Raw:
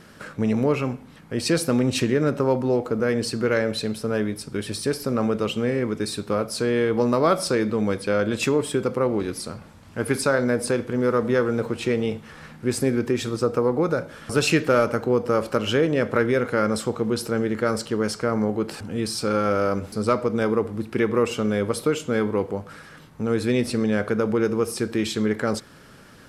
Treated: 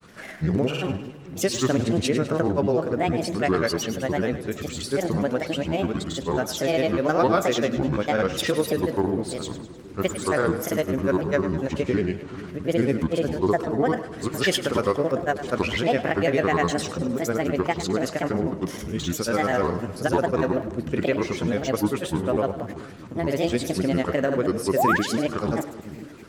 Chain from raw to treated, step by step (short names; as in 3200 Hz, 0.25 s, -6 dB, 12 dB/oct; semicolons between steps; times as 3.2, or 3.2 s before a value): grains, pitch spread up and down by 7 st; painted sound rise, 24.76–24.97, 520–1900 Hz -20 dBFS; split-band echo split 390 Hz, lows 0.432 s, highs 0.102 s, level -12.5 dB